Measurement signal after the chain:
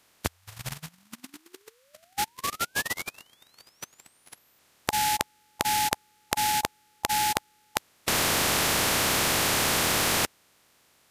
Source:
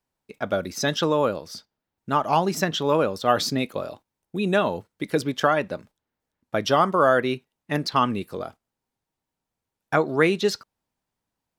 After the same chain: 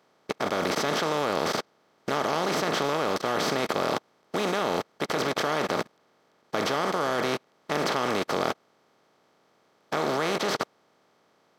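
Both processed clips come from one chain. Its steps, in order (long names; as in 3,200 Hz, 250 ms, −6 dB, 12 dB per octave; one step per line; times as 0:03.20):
compressor on every frequency bin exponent 0.2
output level in coarse steps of 18 dB
expander for the loud parts 2.5 to 1, over −32 dBFS
level −5 dB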